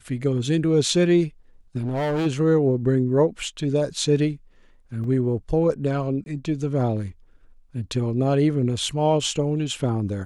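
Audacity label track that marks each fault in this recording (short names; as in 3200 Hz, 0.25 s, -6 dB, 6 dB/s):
1.790000	2.270000	clipped -21 dBFS
5.040000	5.040000	gap 2.3 ms
6.240000	6.260000	gap 21 ms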